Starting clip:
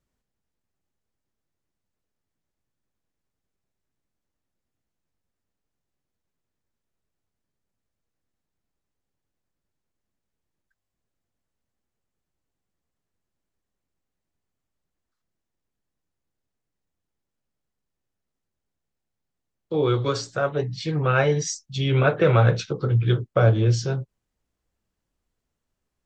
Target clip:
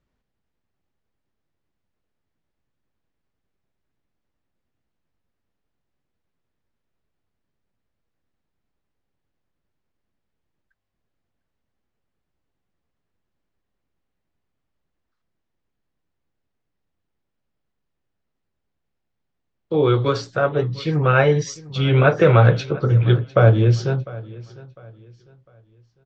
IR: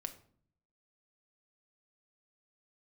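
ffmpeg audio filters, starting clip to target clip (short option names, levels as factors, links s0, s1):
-af "lowpass=3800,aecho=1:1:702|1404|2106:0.1|0.032|0.0102,volume=1.68"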